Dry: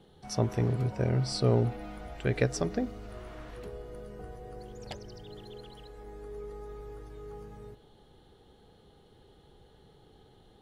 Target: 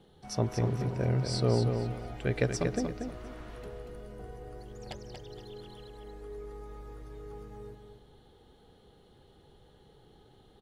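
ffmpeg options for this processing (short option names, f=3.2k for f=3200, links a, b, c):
-af "aecho=1:1:235|470|705:0.501|0.13|0.0339,volume=-1.5dB"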